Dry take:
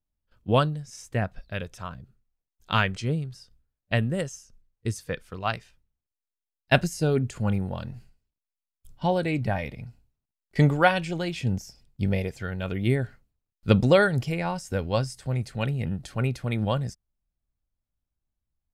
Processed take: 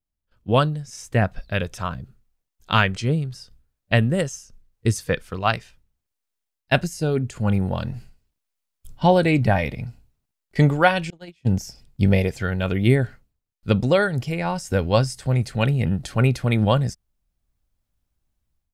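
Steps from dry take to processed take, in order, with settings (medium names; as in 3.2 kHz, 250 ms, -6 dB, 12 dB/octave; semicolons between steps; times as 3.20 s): 11.10–11.54 s: gate -25 dBFS, range -33 dB; level rider gain up to 11.5 dB; trim -2 dB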